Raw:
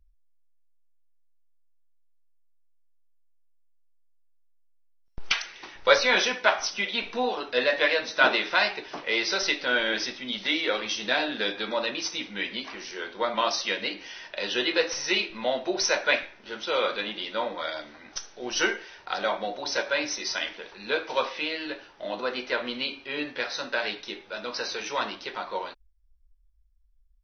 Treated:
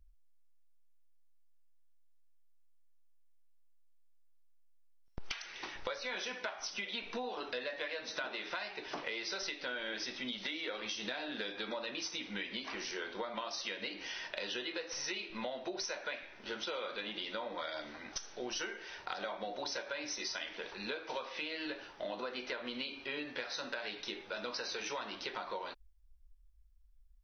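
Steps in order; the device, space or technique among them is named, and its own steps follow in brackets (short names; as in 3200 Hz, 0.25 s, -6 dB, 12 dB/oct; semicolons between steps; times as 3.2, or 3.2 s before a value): serial compression, peaks first (compressor 6:1, threshold -33 dBFS, peak gain reduction 19 dB; compressor 2:1, threshold -39 dBFS, peak gain reduction 6 dB)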